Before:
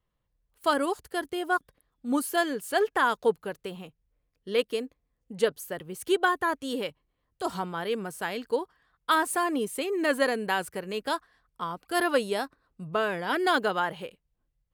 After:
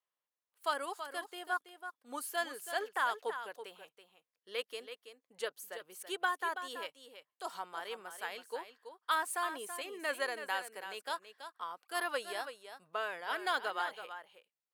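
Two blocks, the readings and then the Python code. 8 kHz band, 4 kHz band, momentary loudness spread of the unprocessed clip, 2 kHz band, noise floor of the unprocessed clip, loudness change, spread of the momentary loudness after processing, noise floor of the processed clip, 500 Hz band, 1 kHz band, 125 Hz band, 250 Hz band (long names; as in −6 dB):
−7.0 dB, −7.0 dB, 13 LU, −7.0 dB, −79 dBFS, −10.0 dB, 14 LU, below −85 dBFS, −13.5 dB, −8.0 dB, below −25 dB, −21.0 dB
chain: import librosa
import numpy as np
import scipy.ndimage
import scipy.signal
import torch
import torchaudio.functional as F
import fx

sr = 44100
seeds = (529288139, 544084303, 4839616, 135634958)

p1 = scipy.signal.sosfilt(scipy.signal.butter(2, 680.0, 'highpass', fs=sr, output='sos'), x)
p2 = p1 + fx.echo_single(p1, sr, ms=329, db=-10.0, dry=0)
y = F.gain(torch.from_numpy(p2), -7.5).numpy()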